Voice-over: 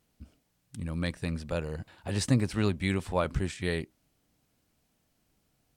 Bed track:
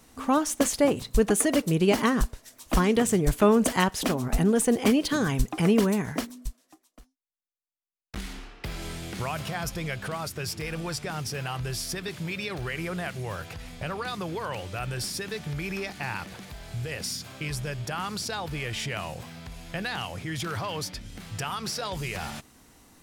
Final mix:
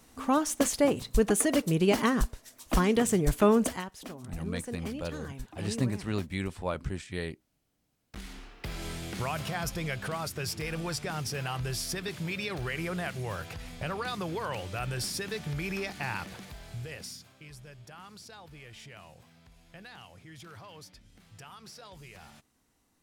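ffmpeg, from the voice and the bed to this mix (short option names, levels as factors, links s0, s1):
-filter_complex "[0:a]adelay=3500,volume=0.596[s0];[1:a]volume=4.22,afade=t=out:st=3.57:d=0.26:silence=0.199526,afade=t=in:st=7.71:d=1.17:silence=0.177828,afade=t=out:st=16.25:d=1.1:silence=0.177828[s1];[s0][s1]amix=inputs=2:normalize=0"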